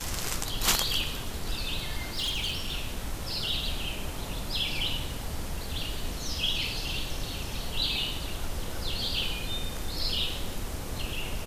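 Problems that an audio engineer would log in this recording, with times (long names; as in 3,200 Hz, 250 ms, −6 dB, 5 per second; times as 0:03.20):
0:02.15–0:02.73: clipping −26.5 dBFS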